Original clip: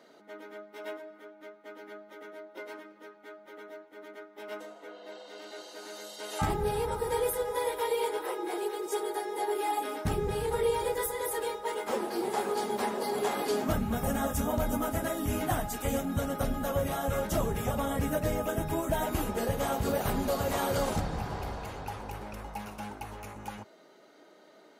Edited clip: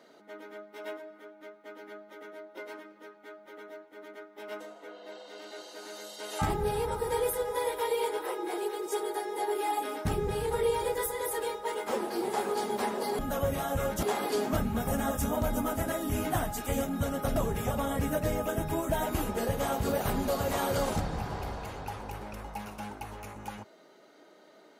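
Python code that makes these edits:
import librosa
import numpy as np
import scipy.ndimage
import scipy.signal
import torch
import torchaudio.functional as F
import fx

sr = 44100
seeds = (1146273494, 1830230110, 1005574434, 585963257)

y = fx.edit(x, sr, fx.move(start_s=16.52, length_s=0.84, to_s=13.19), tone=tone)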